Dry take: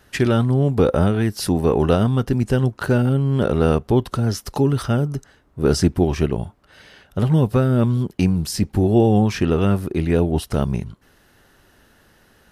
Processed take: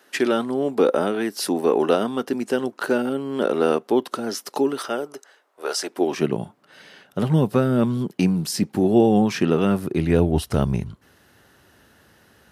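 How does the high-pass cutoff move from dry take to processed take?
high-pass 24 dB/octave
4.56 s 260 Hz
5.77 s 600 Hz
6.30 s 150 Hz
9.68 s 150 Hz
10.30 s 62 Hz

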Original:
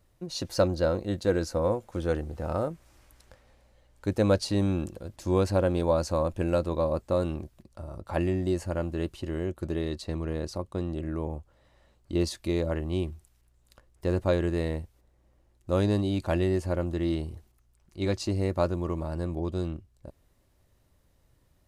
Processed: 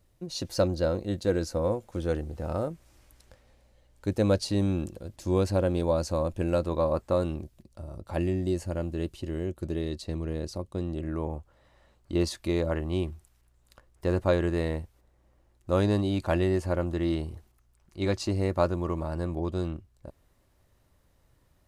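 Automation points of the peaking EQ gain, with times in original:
peaking EQ 1.2 kHz 1.8 oct
6.38 s -3.5 dB
7.04 s +5 dB
7.38 s -5.5 dB
10.75 s -5.5 dB
11.23 s +3 dB

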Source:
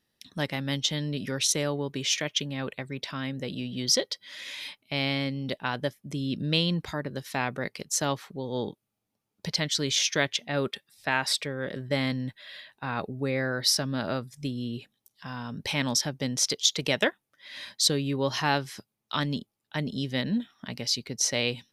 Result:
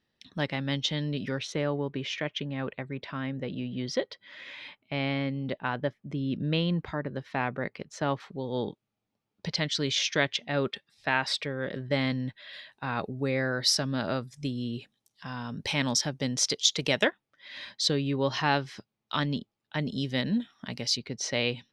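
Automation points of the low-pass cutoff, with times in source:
4.2 kHz
from 1.38 s 2.3 kHz
from 8.20 s 4.6 kHz
from 12.53 s 7.9 kHz
from 17.05 s 4.5 kHz
from 19.81 s 8.2 kHz
from 20.97 s 4 kHz

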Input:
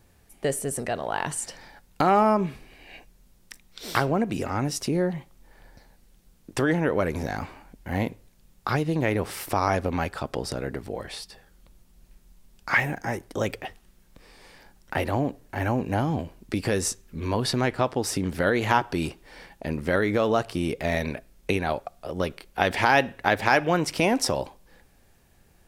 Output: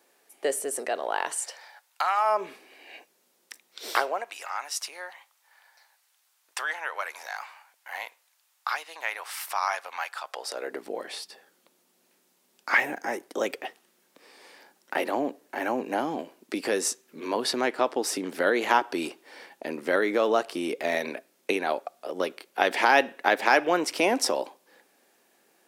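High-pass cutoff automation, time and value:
high-pass 24 dB/octave
1.11 s 340 Hz
2.16 s 1 kHz
2.51 s 320 Hz
3.83 s 320 Hz
4.36 s 860 Hz
10.21 s 860 Hz
10.86 s 280 Hz

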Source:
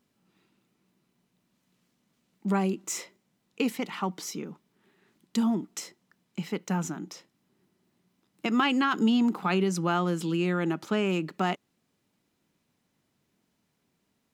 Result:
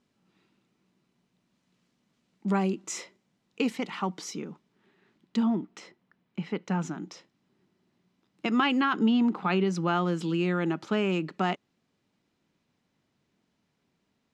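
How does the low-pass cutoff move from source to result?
4.50 s 7 kHz
5.74 s 2.9 kHz
6.43 s 2.9 kHz
7.00 s 5.6 kHz
8.48 s 5.6 kHz
9.08 s 3.2 kHz
10.11 s 5.8 kHz

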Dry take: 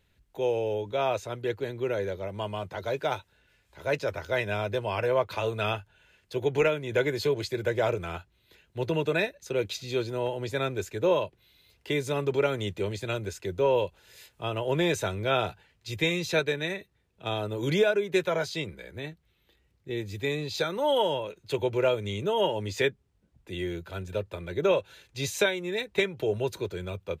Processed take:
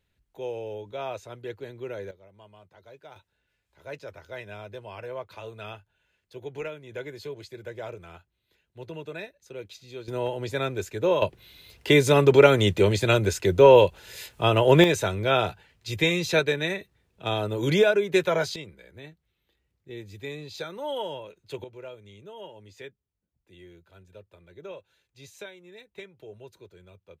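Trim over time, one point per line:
-6.5 dB
from 2.11 s -19 dB
from 3.16 s -11 dB
from 10.08 s +1 dB
from 11.22 s +10.5 dB
from 14.84 s +3.5 dB
from 18.56 s -7 dB
from 21.64 s -17 dB

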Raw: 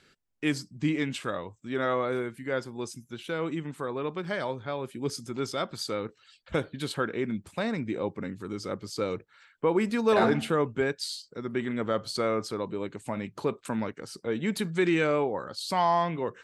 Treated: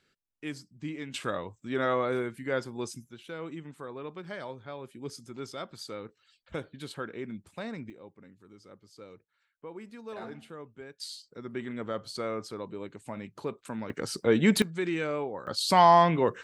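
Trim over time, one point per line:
-10 dB
from 1.14 s 0 dB
from 3.09 s -8 dB
from 7.90 s -18.5 dB
from 11.00 s -6 dB
from 13.90 s +7 dB
from 14.62 s -6 dB
from 15.47 s +6 dB

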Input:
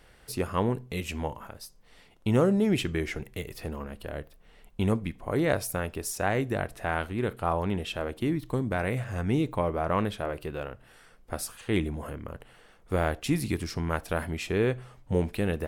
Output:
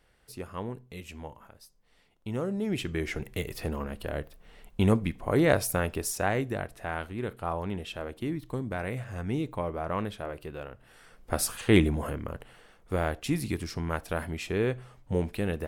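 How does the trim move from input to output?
2.41 s -9.5 dB
3.32 s +3 dB
5.94 s +3 dB
6.70 s -4.5 dB
10.69 s -4.5 dB
11.55 s +8 dB
12.97 s -2 dB

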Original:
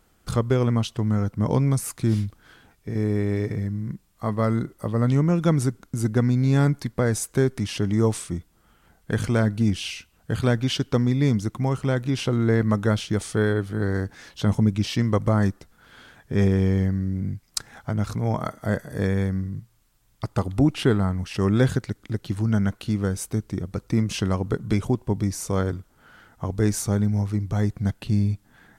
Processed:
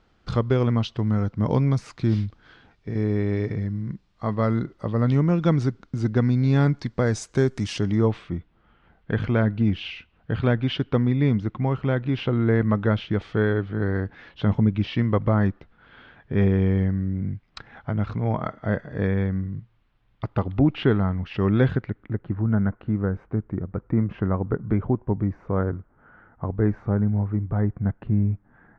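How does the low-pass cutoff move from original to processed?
low-pass 24 dB/octave
6.63 s 4.8 kHz
7.72 s 8.1 kHz
8.11 s 3.2 kHz
21.66 s 3.2 kHz
22.29 s 1.7 kHz

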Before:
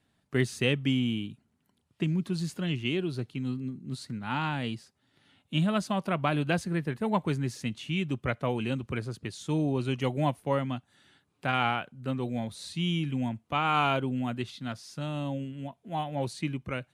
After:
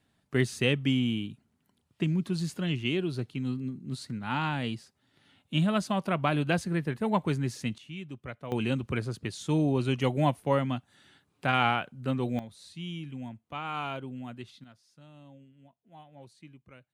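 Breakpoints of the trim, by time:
+0.5 dB
from 7.78 s -10.5 dB
from 8.52 s +2 dB
from 12.39 s -9 dB
from 14.64 s -19 dB

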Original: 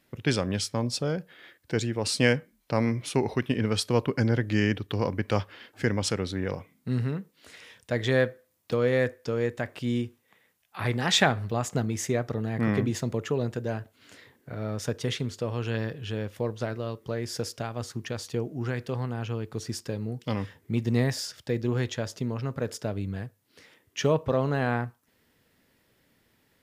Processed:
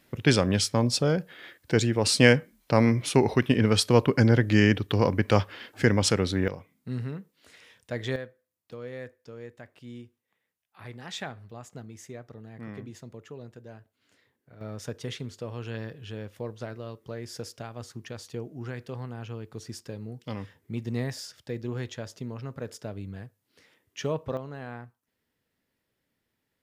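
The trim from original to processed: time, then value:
+4.5 dB
from 6.48 s -5 dB
from 8.16 s -15 dB
from 14.61 s -6 dB
from 24.37 s -13 dB

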